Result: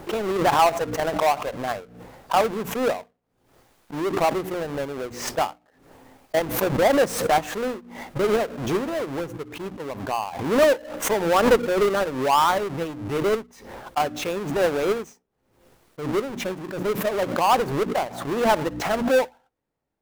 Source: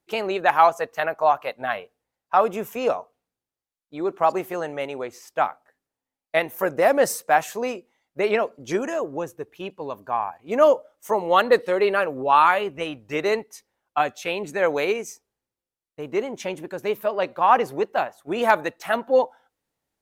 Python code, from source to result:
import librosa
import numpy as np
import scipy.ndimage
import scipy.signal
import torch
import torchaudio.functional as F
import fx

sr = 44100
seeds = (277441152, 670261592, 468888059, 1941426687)

y = fx.halfwave_hold(x, sr)
y = fx.high_shelf(y, sr, hz=2300.0, db=-11.5)
y = fx.hum_notches(y, sr, base_hz=60, count=5)
y = fx.pre_swell(y, sr, db_per_s=69.0)
y = F.gain(torch.from_numpy(y), -3.5).numpy()